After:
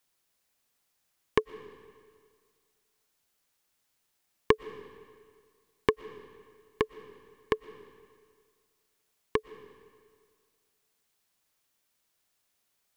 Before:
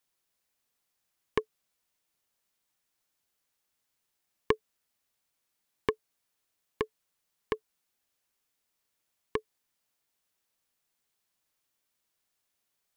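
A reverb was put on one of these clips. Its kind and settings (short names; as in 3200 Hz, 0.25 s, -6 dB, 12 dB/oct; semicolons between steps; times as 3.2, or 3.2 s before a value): digital reverb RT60 1.9 s, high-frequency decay 0.9×, pre-delay 80 ms, DRR 16 dB; gain +4 dB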